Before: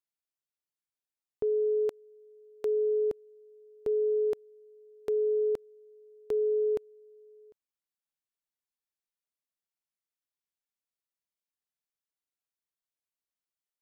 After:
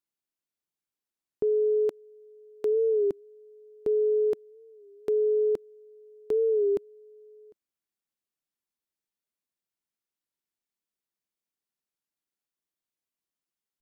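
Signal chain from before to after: small resonant body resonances 210/330 Hz, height 6 dB, ringing for 25 ms; warped record 33 1/3 rpm, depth 100 cents

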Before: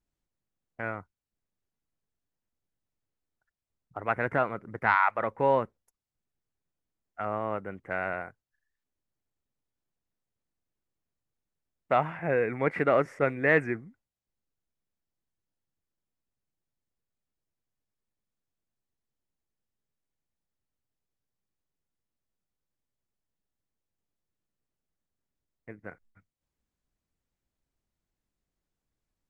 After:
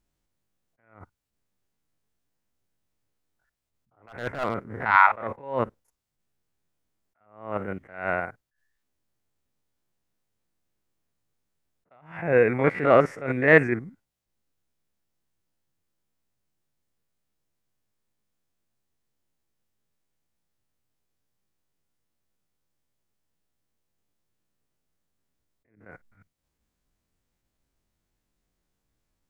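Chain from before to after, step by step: spectrogram pixelated in time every 50 ms; 4.08–4.69 s: hard clipper -24.5 dBFS, distortion -18 dB; attacks held to a fixed rise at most 120 dB/s; trim +8.5 dB

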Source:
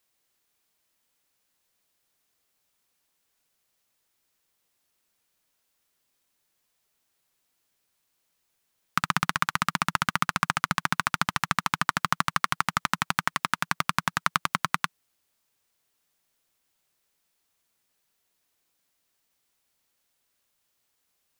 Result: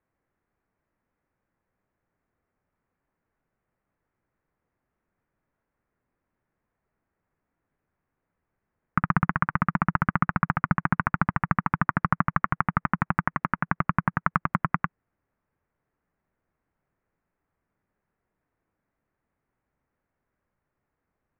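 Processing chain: inverse Chebyshev low-pass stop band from 3.8 kHz, stop band 40 dB; bass shelf 340 Hz +11 dB

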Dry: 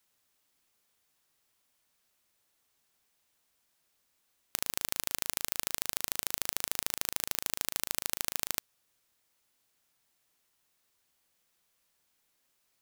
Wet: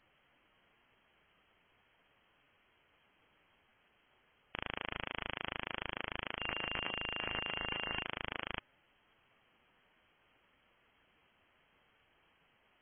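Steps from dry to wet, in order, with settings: 6.39–8.02 s: whistle 410 Hz -52 dBFS; hard clipper -13.5 dBFS, distortion -9 dB; frequency inversion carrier 3.2 kHz; trim +11.5 dB; MP3 16 kbps 22.05 kHz

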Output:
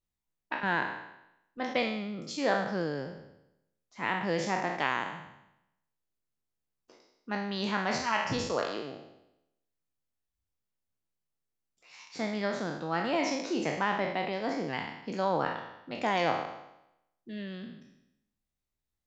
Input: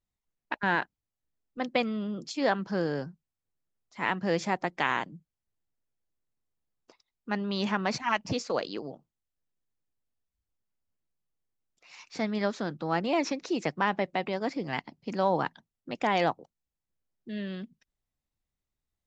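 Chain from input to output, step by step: spectral sustain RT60 0.85 s; trim -4 dB

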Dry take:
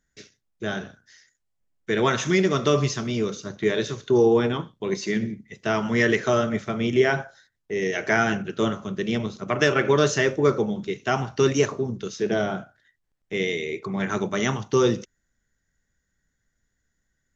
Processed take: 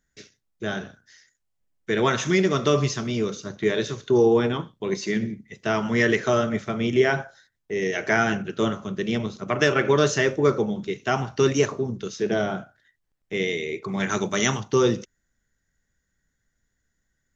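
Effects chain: 13.88–14.60 s: treble shelf 3.4 kHz +11 dB

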